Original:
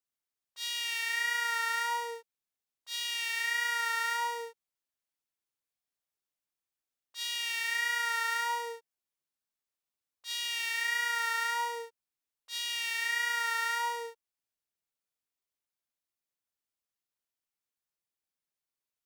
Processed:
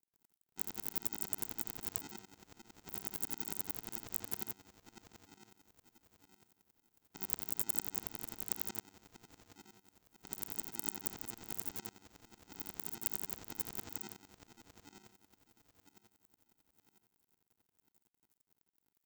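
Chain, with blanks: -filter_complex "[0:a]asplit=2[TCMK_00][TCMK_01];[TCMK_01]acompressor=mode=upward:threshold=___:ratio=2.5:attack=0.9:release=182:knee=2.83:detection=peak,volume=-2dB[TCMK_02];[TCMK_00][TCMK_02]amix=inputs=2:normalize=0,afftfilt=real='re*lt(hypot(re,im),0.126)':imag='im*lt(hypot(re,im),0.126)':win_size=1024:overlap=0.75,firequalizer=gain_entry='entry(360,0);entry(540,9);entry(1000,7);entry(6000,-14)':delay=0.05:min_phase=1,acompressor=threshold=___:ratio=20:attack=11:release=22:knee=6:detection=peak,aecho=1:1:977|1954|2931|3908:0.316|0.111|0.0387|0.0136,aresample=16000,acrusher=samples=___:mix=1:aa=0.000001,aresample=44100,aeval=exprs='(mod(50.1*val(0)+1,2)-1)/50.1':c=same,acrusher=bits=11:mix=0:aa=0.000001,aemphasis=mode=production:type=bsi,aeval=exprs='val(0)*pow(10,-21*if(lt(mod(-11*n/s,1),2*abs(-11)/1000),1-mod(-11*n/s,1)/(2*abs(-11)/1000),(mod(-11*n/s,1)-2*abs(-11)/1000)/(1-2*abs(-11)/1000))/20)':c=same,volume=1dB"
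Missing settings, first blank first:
-52dB, -40dB, 28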